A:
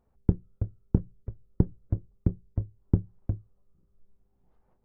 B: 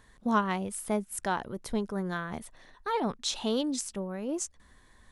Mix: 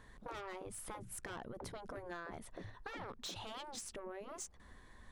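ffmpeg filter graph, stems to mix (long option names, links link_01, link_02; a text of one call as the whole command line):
ffmpeg -i stem1.wav -i stem2.wav -filter_complex "[0:a]volume=0dB[link_01];[1:a]asoftclip=type=tanh:threshold=-31dB,volume=1dB[link_02];[link_01][link_02]amix=inputs=2:normalize=0,highshelf=frequency=3800:gain=-8,afftfilt=real='re*lt(hypot(re,im),0.0891)':imag='im*lt(hypot(re,im),0.0891)':win_size=1024:overlap=0.75,acompressor=threshold=-43dB:ratio=6" out.wav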